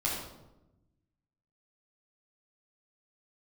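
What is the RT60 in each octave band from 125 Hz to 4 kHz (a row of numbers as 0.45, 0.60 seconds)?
1.6, 1.4, 1.1, 0.85, 0.65, 0.60 seconds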